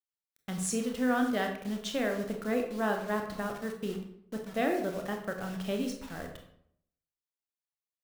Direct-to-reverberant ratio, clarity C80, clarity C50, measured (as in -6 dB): 3.0 dB, 9.5 dB, 6.5 dB